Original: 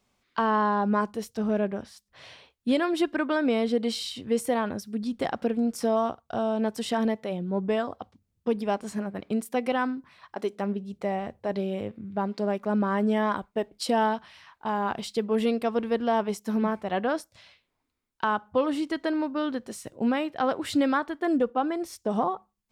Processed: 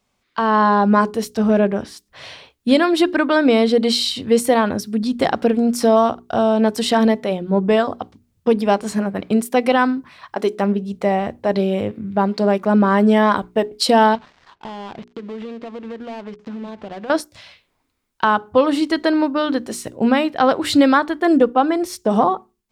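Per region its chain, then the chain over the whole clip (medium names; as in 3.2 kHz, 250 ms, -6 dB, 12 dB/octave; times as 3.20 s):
14.15–17.10 s: dead-time distortion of 0.21 ms + compression 8:1, threshold -38 dBFS + distance through air 160 m
whole clip: hum notches 60/120/180/240/300/360/420 Hz; dynamic bell 4.2 kHz, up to +5 dB, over -54 dBFS, Q 4.3; level rider gain up to 9 dB; trim +2 dB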